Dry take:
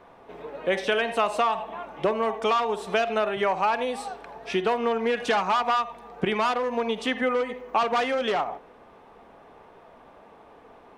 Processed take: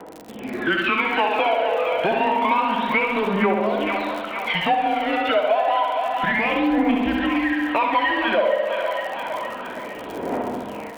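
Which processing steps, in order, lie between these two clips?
in parallel at −7 dB: wave folding −27.5 dBFS
on the sum: floating-point word with a short mantissa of 2 bits
phase shifter 0.29 Hz, delay 1.4 ms, feedback 77%
single-sideband voice off tune −200 Hz 450–3,500 Hz
flutter between parallel walls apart 11.5 metres, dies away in 0.92 s
automatic gain control gain up to 13.5 dB
surface crackle 78 per second −28 dBFS
on a send: echo with a time of its own for lows and highs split 700 Hz, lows 110 ms, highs 461 ms, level −9.5 dB
on the sum: downward compressor 3 to 1, threshold −19 dBFS, peak gain reduction 10.5 dB

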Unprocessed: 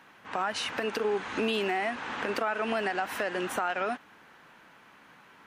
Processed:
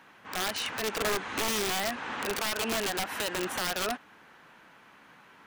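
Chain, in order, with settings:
wrap-around overflow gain 23.5 dB

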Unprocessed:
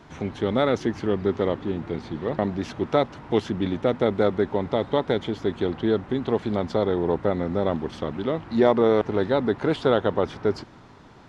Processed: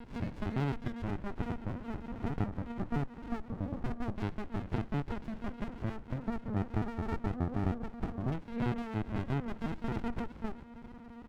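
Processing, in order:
mains-hum notches 60/120/180/240/300 Hz
dynamic equaliser 140 Hz, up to −5 dB, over −39 dBFS, Q 0.76
in parallel at −7 dB: wrap-around overflow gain 12.5 dB
on the sum: comb filter 4.3 ms, depth 71%
downward compressor 3 to 1, threshold −28 dBFS, peak gain reduction 12 dB
auto-filter low-pass saw down 0.24 Hz 720–2,400 Hz
linear-prediction vocoder at 8 kHz pitch kept
on a send at −21.5 dB: graphic EQ with 10 bands 125 Hz −5 dB, 250 Hz +11 dB, 500 Hz −6 dB + convolution reverb, pre-delay 3 ms
on the sum: windowed peak hold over 65 samples
level −7 dB

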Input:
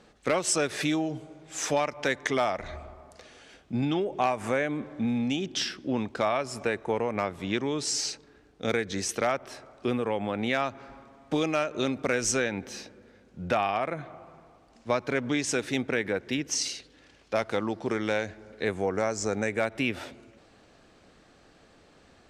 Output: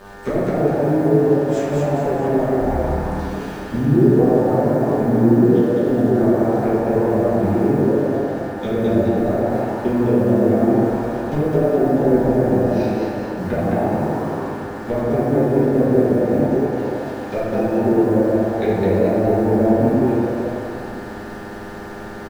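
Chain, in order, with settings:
treble cut that deepens with the level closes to 440 Hz, closed at −27.5 dBFS
low-shelf EQ 140 Hz +11.5 dB
bit reduction 9 bits
hum with harmonics 100 Hz, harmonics 18, −47 dBFS −2 dB per octave
echo with shifted repeats 211 ms, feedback 48%, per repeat +120 Hz, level −3 dB
convolution reverb RT60 2.0 s, pre-delay 5 ms, DRR −9.5 dB

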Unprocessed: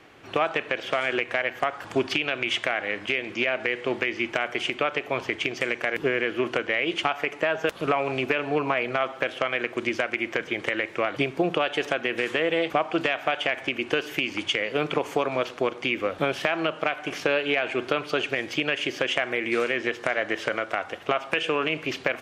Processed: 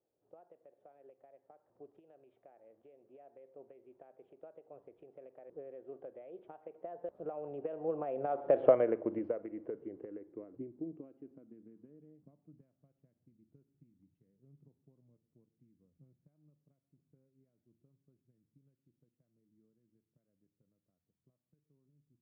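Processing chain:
source passing by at 0:08.68, 27 m/s, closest 3.9 metres
low-pass filter sweep 560 Hz → 160 Hz, 0:09.02–0:12.83

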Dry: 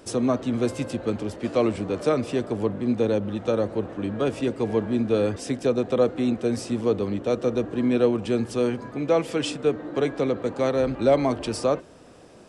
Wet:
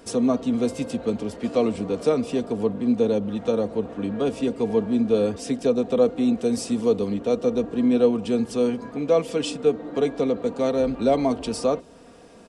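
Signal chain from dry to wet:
0:06.37–0:07.14: high-shelf EQ 5,600 Hz +7 dB
comb filter 4.3 ms, depth 49%
dynamic equaliser 1,700 Hz, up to −7 dB, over −44 dBFS, Q 1.4

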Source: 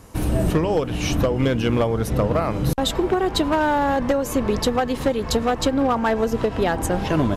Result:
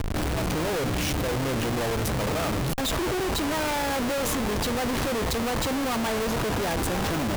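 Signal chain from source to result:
comparator with hysteresis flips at −39.5 dBFS
level −5.5 dB

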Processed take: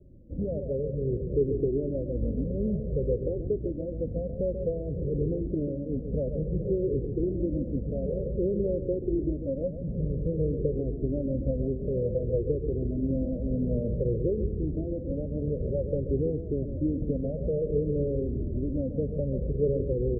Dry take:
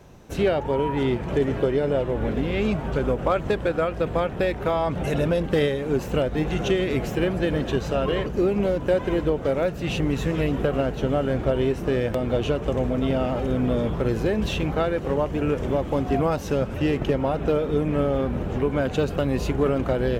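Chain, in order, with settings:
Butterworth low-pass 560 Hz 72 dB per octave
on a send: single-tap delay 137 ms −9 dB
on the sum: flanger whose copies keep moving one way falling 0.54 Hz

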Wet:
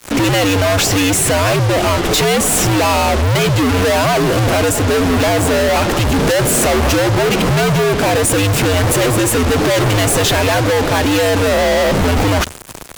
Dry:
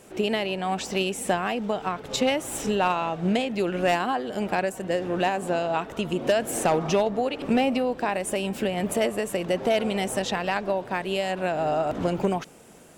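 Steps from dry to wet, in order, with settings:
fuzz pedal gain 47 dB, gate −45 dBFS
frequency shifter −91 Hz
level +1 dB

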